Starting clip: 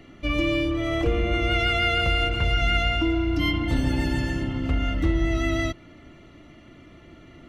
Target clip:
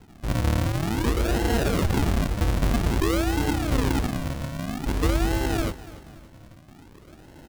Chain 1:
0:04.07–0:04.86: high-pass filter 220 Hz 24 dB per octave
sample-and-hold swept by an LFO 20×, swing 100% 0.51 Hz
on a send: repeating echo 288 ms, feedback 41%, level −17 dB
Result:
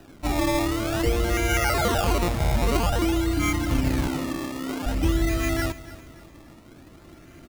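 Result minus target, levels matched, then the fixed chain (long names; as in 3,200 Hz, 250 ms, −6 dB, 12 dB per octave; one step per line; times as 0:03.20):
sample-and-hold swept by an LFO: distortion −6 dB
0:04.07–0:04.86: high-pass filter 220 Hz 24 dB per octave
sample-and-hold swept by an LFO 73×, swing 100% 0.51 Hz
on a send: repeating echo 288 ms, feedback 41%, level −17 dB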